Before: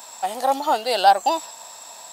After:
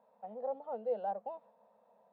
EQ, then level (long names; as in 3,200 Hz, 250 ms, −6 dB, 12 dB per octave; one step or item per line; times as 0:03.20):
pair of resonant band-passes 320 Hz, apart 1.2 octaves
high-frequency loss of the air 440 metres
−5.5 dB